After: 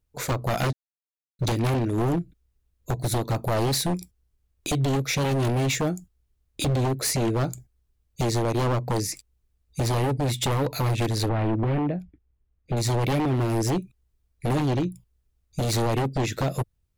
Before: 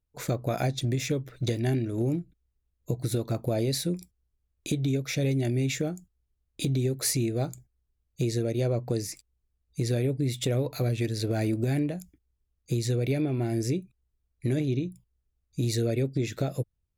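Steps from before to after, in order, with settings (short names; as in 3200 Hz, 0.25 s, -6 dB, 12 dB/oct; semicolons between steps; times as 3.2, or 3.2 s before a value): 6.64–7.5 high shelf 3800 Hz -5.5 dB; wavefolder -25 dBFS; 0.73–1.39 mute; 11.29–12.77 air absorption 460 m; gain +6.5 dB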